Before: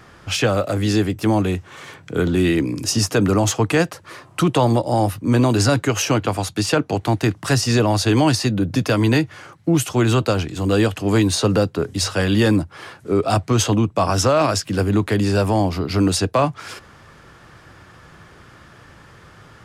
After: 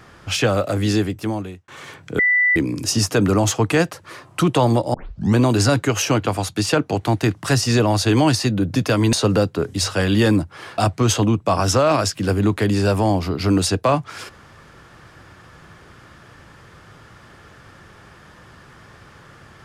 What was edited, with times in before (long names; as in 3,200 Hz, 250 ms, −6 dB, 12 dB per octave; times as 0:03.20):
0:00.90–0:01.68: fade out
0:02.19–0:02.56: beep over 1,980 Hz −13 dBFS
0:04.94: tape start 0.42 s
0:09.13–0:11.33: remove
0:12.98–0:13.28: remove